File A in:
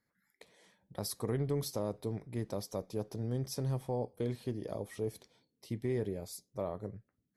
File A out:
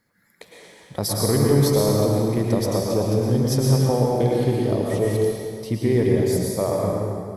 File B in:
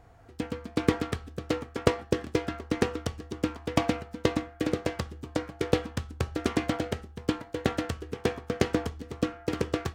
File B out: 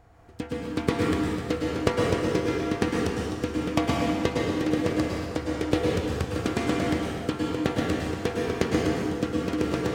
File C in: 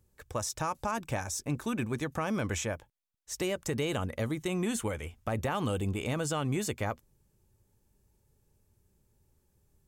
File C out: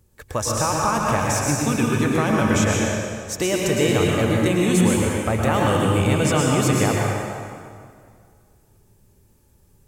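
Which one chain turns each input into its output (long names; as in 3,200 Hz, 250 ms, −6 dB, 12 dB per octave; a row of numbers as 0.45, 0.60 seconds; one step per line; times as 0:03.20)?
dense smooth reverb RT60 2.1 s, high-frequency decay 0.8×, pre-delay 95 ms, DRR −2.5 dB
normalise the peak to −6 dBFS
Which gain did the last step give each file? +13.0, −1.0, +9.0 decibels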